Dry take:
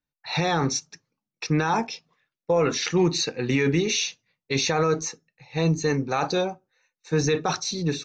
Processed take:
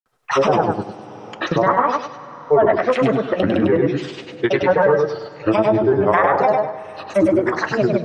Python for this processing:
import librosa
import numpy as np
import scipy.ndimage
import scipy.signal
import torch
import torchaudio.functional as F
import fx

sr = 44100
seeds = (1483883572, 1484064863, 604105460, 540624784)

p1 = fx.env_lowpass_down(x, sr, base_hz=950.0, full_db=-19.5)
p2 = fx.band_shelf(p1, sr, hz=860.0, db=11.5, octaves=2.4)
p3 = fx.granulator(p2, sr, seeds[0], grain_ms=100.0, per_s=20.0, spray_ms=100.0, spread_st=7)
p4 = p3 + fx.echo_feedback(p3, sr, ms=100, feedback_pct=24, wet_db=-3.5, dry=0)
p5 = fx.rev_double_slope(p4, sr, seeds[1], early_s=0.21, late_s=2.5, knee_db=-17, drr_db=13.5)
y = fx.band_squash(p5, sr, depth_pct=70)